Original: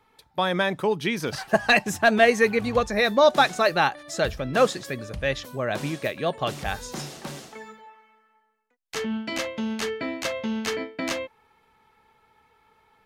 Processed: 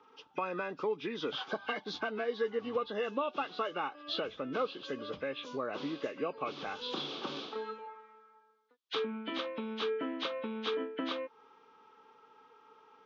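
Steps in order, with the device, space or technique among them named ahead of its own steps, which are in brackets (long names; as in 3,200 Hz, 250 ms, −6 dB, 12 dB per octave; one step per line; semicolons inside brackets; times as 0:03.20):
hearing aid with frequency lowering (hearing-aid frequency compression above 1,400 Hz 1.5 to 1; downward compressor 4 to 1, threshold −36 dBFS, peak gain reduction 19.5 dB; loudspeaker in its box 270–5,500 Hz, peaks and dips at 280 Hz +7 dB, 450 Hz +6 dB, 670 Hz −5 dB, 1,200 Hz +8 dB, 1,900 Hz −9 dB, 3,400 Hz +8 dB)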